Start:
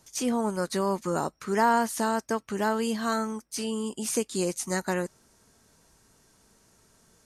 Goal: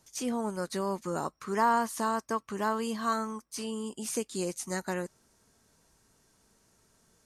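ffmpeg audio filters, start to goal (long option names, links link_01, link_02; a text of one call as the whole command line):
ffmpeg -i in.wav -filter_complex "[0:a]asettb=1/sr,asplit=3[link_01][link_02][link_03];[link_01]atrim=end=1.244[link_04];[link_02]atrim=start=1.24:end=3.71,asetpts=PTS-STARTPTS,afade=type=in:duration=0.004:curve=qsin,afade=type=out:start_time=2.466:duration=0.004:curve=qsin,equalizer=frequency=1100:width=5.6:gain=10[link_05];[link_03]atrim=start=3.706[link_06];[link_04][link_05]acrossfade=duration=0.004:curve1=hsin:curve2=qsin[link_07];[link_07][link_06]acrossfade=duration=0.004:curve1=qsin:curve2=hsin,volume=-5dB" out.wav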